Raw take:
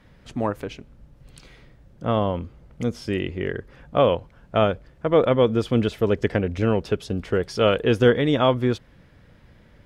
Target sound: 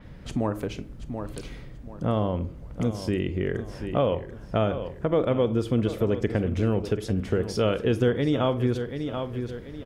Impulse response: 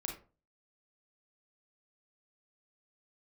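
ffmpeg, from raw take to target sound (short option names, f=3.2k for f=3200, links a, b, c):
-filter_complex "[0:a]lowshelf=f=480:g=6.5,aecho=1:1:734|1468|2202:0.2|0.0479|0.0115,asplit=2[a][b];[1:a]atrim=start_sample=2205,asetrate=42336,aresample=44100[c];[b][c]afir=irnorm=-1:irlink=0,volume=-8dB[d];[a][d]amix=inputs=2:normalize=0,acompressor=threshold=-29dB:ratio=2,adynamicequalizer=threshold=0.00251:dfrequency=6000:dqfactor=0.7:tfrequency=6000:tqfactor=0.7:attack=5:release=100:ratio=0.375:range=3.5:mode=boostabove:tftype=highshelf"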